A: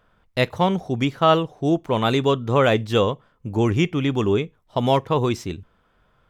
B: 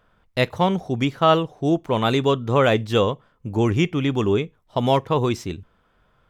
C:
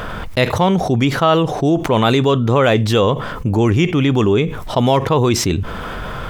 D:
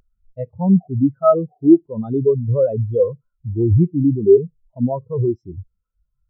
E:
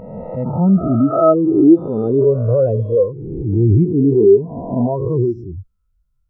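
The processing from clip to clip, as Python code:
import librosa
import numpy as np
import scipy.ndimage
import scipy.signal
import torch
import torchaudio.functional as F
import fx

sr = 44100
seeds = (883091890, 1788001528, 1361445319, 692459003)

y1 = x
y2 = fx.env_flatten(y1, sr, amount_pct=70)
y2 = F.gain(torch.from_numpy(y2), 1.5).numpy()
y3 = fx.spectral_expand(y2, sr, expansion=4.0)
y4 = fx.spec_swells(y3, sr, rise_s=1.64)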